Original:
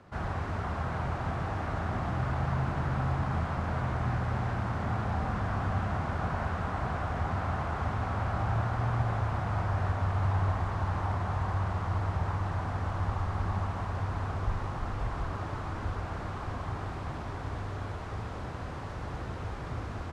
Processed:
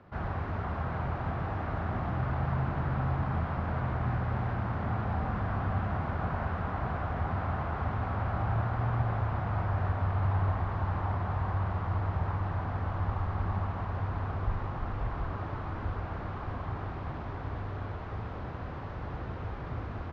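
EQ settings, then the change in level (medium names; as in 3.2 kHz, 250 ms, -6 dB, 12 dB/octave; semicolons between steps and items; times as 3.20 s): distance through air 230 m; 0.0 dB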